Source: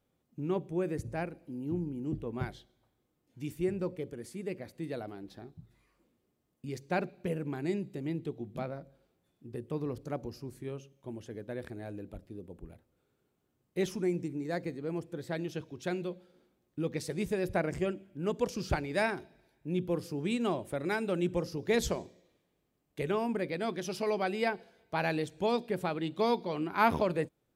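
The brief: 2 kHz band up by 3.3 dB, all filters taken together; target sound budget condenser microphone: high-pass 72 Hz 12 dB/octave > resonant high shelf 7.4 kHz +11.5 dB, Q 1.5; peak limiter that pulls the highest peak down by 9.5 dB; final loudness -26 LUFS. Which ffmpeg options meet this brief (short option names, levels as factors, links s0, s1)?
-af "equalizer=f=2000:t=o:g=5,alimiter=limit=0.0891:level=0:latency=1,highpass=72,highshelf=f=7400:t=q:w=1.5:g=11.5,volume=2.82"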